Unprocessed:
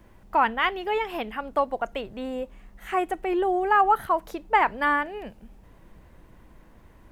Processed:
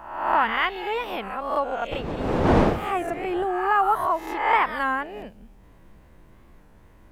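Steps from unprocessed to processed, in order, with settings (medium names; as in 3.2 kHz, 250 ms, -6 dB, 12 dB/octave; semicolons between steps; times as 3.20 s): reverse spectral sustain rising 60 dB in 0.80 s; 1.91–3.44 s: wind noise 560 Hz -25 dBFS; warped record 33 1/3 rpm, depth 160 cents; trim -2.5 dB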